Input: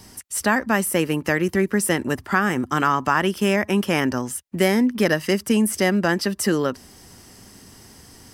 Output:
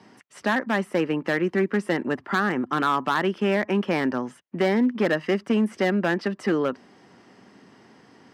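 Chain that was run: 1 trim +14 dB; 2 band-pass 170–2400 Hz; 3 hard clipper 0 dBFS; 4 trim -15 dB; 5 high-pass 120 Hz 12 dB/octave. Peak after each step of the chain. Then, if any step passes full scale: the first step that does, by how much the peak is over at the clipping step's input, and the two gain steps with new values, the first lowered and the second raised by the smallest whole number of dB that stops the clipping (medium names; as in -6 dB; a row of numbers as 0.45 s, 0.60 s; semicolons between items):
+9.5 dBFS, +8.0 dBFS, 0.0 dBFS, -15.0 dBFS, -12.0 dBFS; step 1, 8.0 dB; step 1 +6 dB, step 4 -7 dB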